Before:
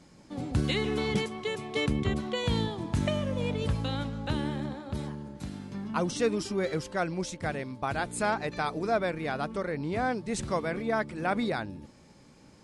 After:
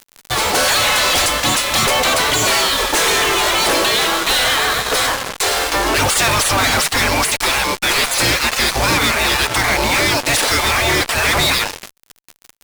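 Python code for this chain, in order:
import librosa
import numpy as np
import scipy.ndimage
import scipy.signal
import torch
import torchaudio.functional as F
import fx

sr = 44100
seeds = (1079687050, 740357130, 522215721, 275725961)

y = fx.spec_gate(x, sr, threshold_db=-20, keep='weak')
y = fx.fuzz(y, sr, gain_db=63.0, gate_db=-57.0)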